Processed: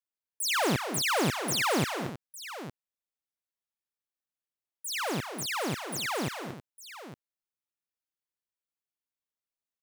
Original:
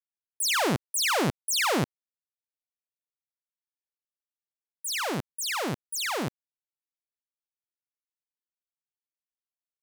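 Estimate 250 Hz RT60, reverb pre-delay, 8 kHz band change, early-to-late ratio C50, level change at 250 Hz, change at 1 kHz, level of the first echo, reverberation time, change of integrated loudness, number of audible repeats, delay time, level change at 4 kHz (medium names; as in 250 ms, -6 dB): no reverb, no reverb, -3.5 dB, no reverb, -0.5 dB, -1.0 dB, -9.0 dB, no reverb, -2.5 dB, 2, 225 ms, -2.5 dB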